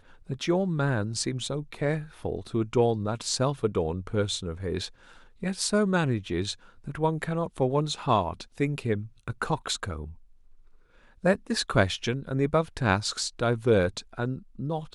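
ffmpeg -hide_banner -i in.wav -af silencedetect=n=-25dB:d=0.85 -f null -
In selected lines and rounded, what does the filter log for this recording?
silence_start: 9.96
silence_end: 11.25 | silence_duration: 1.29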